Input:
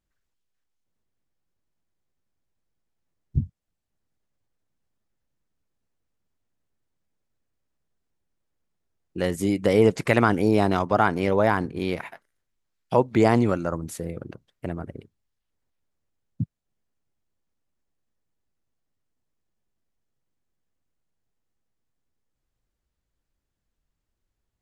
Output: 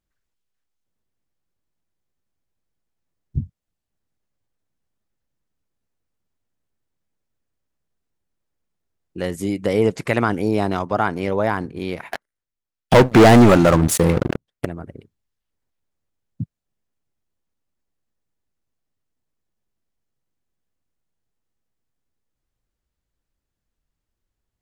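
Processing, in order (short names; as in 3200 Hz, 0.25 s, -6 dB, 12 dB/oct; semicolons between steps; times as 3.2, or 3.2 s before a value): 12.13–14.65 sample leveller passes 5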